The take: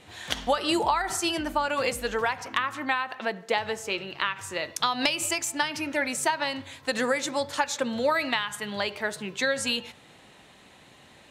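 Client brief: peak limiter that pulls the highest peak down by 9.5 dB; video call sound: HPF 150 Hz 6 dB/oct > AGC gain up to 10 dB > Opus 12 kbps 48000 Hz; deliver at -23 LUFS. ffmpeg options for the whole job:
-af "alimiter=limit=-19.5dB:level=0:latency=1,highpass=f=150:p=1,dynaudnorm=m=10dB,volume=9dB" -ar 48000 -c:a libopus -b:a 12k

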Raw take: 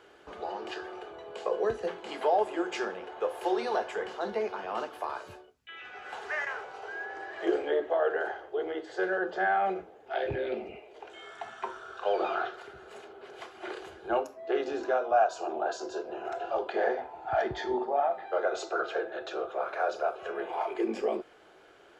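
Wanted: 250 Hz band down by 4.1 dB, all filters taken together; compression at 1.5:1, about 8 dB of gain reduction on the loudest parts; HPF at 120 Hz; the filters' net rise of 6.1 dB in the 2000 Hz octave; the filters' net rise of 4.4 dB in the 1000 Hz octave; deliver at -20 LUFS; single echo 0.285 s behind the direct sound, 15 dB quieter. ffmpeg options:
-af "highpass=120,equalizer=f=250:t=o:g=-9,equalizer=f=1k:t=o:g=6.5,equalizer=f=2k:t=o:g=5.5,acompressor=threshold=-39dB:ratio=1.5,aecho=1:1:285:0.178,volume=15dB"

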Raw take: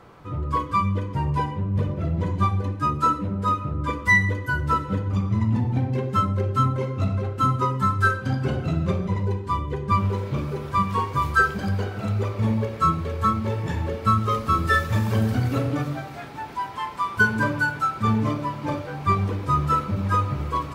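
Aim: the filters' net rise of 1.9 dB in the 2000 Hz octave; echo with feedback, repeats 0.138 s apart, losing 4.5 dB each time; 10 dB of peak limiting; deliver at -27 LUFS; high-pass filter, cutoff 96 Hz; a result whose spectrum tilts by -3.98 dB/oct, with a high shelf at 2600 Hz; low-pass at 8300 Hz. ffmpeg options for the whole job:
-af "highpass=96,lowpass=8.3k,equalizer=f=2k:t=o:g=5,highshelf=f=2.6k:g=-6.5,alimiter=limit=-16dB:level=0:latency=1,aecho=1:1:138|276|414|552|690|828|966|1104|1242:0.596|0.357|0.214|0.129|0.0772|0.0463|0.0278|0.0167|0.01,volume=-2.5dB"

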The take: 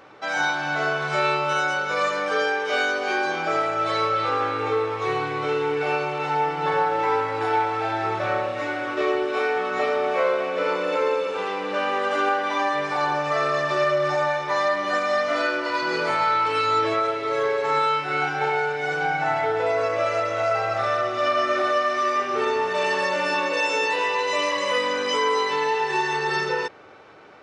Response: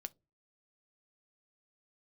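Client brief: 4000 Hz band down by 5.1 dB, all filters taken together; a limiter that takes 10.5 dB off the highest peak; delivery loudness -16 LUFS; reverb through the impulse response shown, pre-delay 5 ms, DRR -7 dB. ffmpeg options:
-filter_complex "[0:a]equalizer=f=4k:t=o:g=-7,alimiter=limit=-21dB:level=0:latency=1,asplit=2[a][b];[1:a]atrim=start_sample=2205,adelay=5[c];[b][c]afir=irnorm=-1:irlink=0,volume=11dB[d];[a][d]amix=inputs=2:normalize=0,volume=4.5dB"

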